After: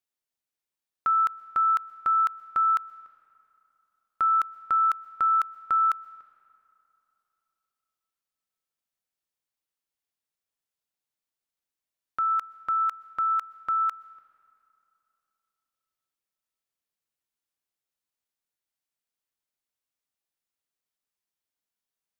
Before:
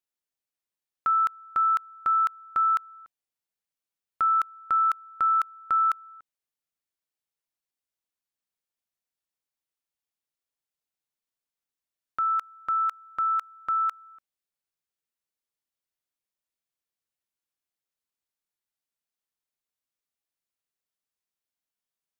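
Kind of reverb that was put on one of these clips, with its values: digital reverb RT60 3.2 s, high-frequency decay 0.55×, pre-delay 85 ms, DRR 19.5 dB

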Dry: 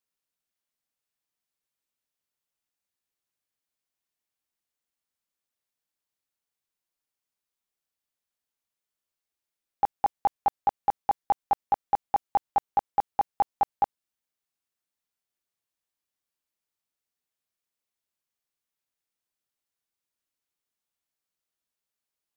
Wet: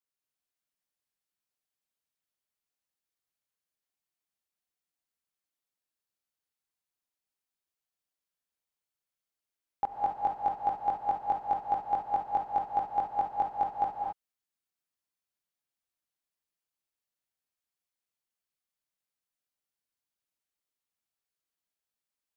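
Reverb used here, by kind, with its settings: non-linear reverb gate 0.29 s rising, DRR 0 dB; gain -6.5 dB

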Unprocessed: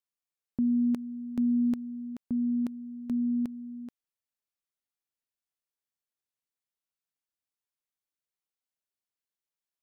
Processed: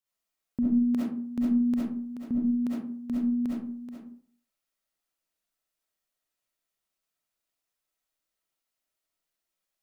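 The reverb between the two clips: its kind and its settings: digital reverb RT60 0.52 s, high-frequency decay 0.5×, pre-delay 25 ms, DRR -7.5 dB

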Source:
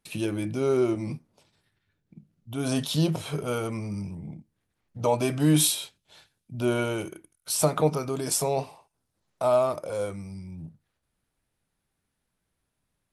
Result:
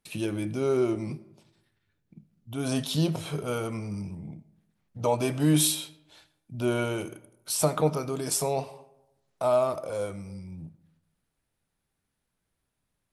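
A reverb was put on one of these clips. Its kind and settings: digital reverb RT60 0.91 s, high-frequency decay 0.5×, pre-delay 40 ms, DRR 18 dB; gain -1.5 dB

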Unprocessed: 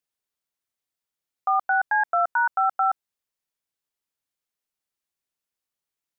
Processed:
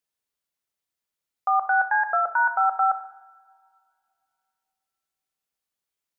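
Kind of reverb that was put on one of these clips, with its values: two-slope reverb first 0.8 s, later 2.7 s, from -22 dB, DRR 7.5 dB

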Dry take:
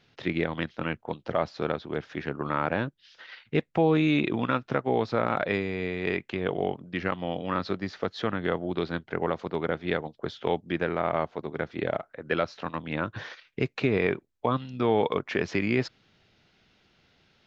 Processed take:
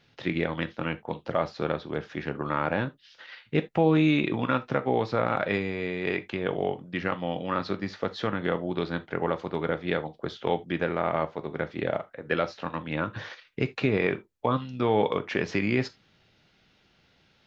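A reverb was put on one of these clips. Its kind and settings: non-linear reverb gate 0.1 s falling, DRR 9.5 dB

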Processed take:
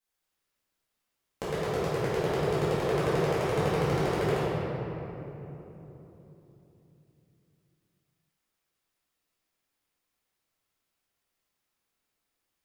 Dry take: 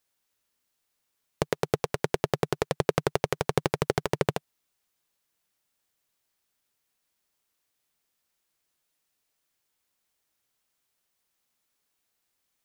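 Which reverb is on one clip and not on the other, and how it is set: shoebox room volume 190 m³, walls hard, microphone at 2.1 m; gain -13.5 dB

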